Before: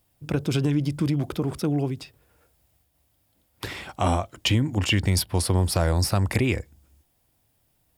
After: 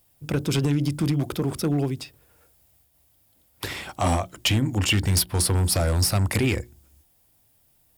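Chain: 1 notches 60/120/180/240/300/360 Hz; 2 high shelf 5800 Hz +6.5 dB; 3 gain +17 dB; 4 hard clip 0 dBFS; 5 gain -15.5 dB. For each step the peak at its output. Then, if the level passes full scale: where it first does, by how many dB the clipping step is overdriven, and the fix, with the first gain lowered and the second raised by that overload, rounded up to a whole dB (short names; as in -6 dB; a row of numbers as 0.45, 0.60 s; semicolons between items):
-8.5, -7.5, +9.5, 0.0, -15.5 dBFS; step 3, 9.5 dB; step 3 +7 dB, step 5 -5.5 dB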